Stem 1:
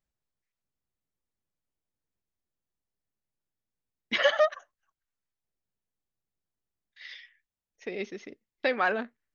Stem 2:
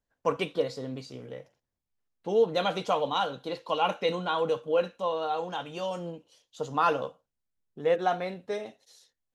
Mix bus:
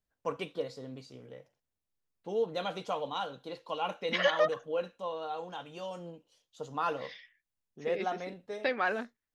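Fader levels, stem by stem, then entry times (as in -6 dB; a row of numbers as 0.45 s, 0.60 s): -4.0 dB, -7.5 dB; 0.00 s, 0.00 s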